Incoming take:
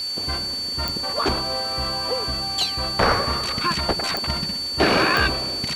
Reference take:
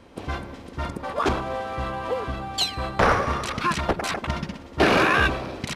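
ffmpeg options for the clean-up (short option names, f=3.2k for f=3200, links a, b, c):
-af "adeclick=t=4,bandreject=f=4.5k:w=30,afwtdn=0.01"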